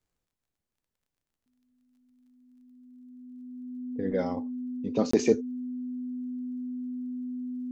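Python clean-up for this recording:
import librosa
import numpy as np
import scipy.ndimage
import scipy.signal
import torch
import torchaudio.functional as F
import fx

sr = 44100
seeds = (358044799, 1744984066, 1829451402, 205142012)

y = fx.fix_declick_ar(x, sr, threshold=6.5)
y = fx.notch(y, sr, hz=250.0, q=30.0)
y = fx.fix_interpolate(y, sr, at_s=(5.11,), length_ms=24.0)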